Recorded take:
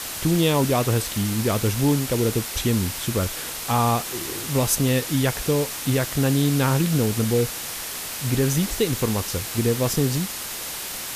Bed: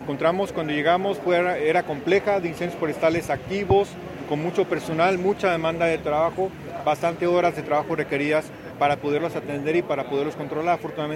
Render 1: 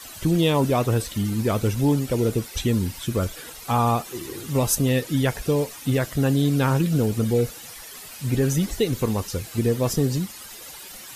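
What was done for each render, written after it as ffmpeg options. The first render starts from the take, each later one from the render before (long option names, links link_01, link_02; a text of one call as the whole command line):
ffmpeg -i in.wav -af "afftdn=noise_reduction=13:noise_floor=-32" out.wav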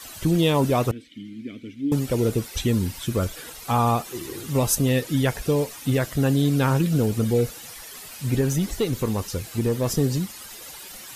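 ffmpeg -i in.wav -filter_complex "[0:a]asettb=1/sr,asplit=3[link_01][link_02][link_03];[link_01]atrim=end=0.914[link_04];[link_02]atrim=start=0.91:end=1.92,asetpts=PTS-STARTPTS,afade=type=in:duration=0.004:curve=qsin,afade=type=out:start_time=1.006:duration=0.004:curve=qsin,asplit=3[link_05][link_06][link_07];[link_05]bandpass=frequency=270:width_type=q:width=8,volume=0dB[link_08];[link_06]bandpass=frequency=2290:width_type=q:width=8,volume=-6dB[link_09];[link_07]bandpass=frequency=3010:width_type=q:width=8,volume=-9dB[link_10];[link_08][link_09][link_10]amix=inputs=3:normalize=0[link_11];[link_03]atrim=start=1.916[link_12];[link_04][link_11]acrossfade=duration=0.004:curve1=hsin:curve2=qsin[link_13];[link_13][link_12]acrossfade=duration=0.004:curve1=qsin:curve2=hsin,asettb=1/sr,asplit=3[link_14][link_15][link_16];[link_14]atrim=end=8.414[link_17];[link_15]atrim=start=8.41:end=9.89,asetpts=PTS-STARTPTS,afade=type=in:duration=0.004:curve=qsin,afade=type=out:start_time=1.476:duration=0.004:curve=qsin,aeval=exprs='(tanh(5.01*val(0)+0.2)-tanh(0.2))/5.01':channel_layout=same[link_18];[link_16]atrim=start=9.886[link_19];[link_17][link_18]acrossfade=duration=0.004:curve1=hsin:curve2=qsin[link_20];[link_20][link_19]acrossfade=duration=0.004:curve1=qsin:curve2=hsin" out.wav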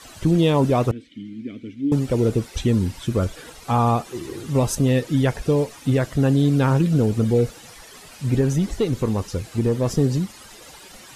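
ffmpeg -i in.wav -af "lowpass=9400,tiltshelf=frequency=1400:gain=3" out.wav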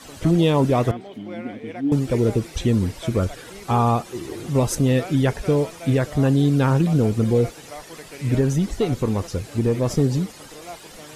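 ffmpeg -i in.wav -i bed.wav -filter_complex "[1:a]volume=-16dB[link_01];[0:a][link_01]amix=inputs=2:normalize=0" out.wav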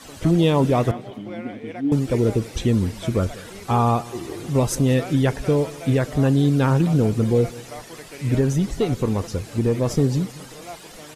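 ffmpeg -i in.wav -af "aecho=1:1:192|384|576:0.0891|0.0428|0.0205" out.wav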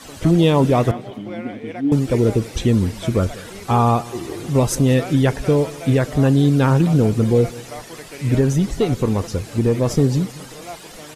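ffmpeg -i in.wav -af "volume=3dB" out.wav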